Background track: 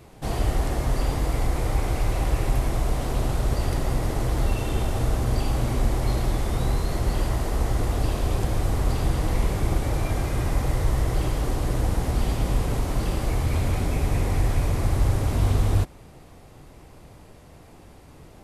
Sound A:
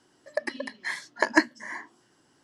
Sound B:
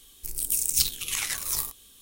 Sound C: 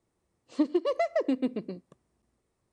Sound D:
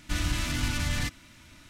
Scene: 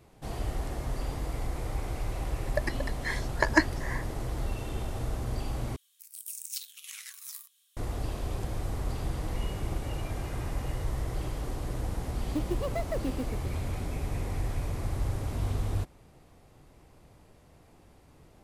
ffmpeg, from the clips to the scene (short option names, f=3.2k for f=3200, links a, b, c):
-filter_complex "[2:a]asplit=2[a][b];[0:a]volume=-9.5dB[c];[a]highpass=f=1.3k:w=0.5412,highpass=f=1.3k:w=1.3066[d];[b]lowpass=f=2.5k:t=q:w=0.5098,lowpass=f=2.5k:t=q:w=0.6013,lowpass=f=2.5k:t=q:w=0.9,lowpass=f=2.5k:t=q:w=2.563,afreqshift=-2900[e];[3:a]acrusher=bits=7:mode=log:mix=0:aa=0.000001[f];[c]asplit=2[g][h];[g]atrim=end=5.764[i];[d]atrim=end=2.01,asetpts=PTS-STARTPTS,volume=-14.5dB[j];[h]atrim=start=7.766[k];[1:a]atrim=end=2.43,asetpts=PTS-STARTPTS,volume=-2dB,afade=t=in:d=0.004:c=hsin,afade=t=out:st=2.426:d=0.004:c=hsin,adelay=2200[l];[e]atrim=end=2.01,asetpts=PTS-STARTPTS,volume=-15.5dB,afade=t=in:d=0.004:c=hsin,afade=t=out:st=2.006:d=0.004:c=hsin,adelay=9110[m];[f]atrim=end=2.72,asetpts=PTS-STARTPTS,volume=-6.5dB,afade=t=in:d=0.004:c=hsin,afade=t=out:st=2.716:d=0.004:c=hsin,adelay=11760[n];[i][j]acrossfade=d=0.004:c1=hsin:c2=hsin[o];[o][k]acrossfade=d=0.004:c1=hsin:c2=hsin[p];[p][l][m][n]amix=inputs=4:normalize=0"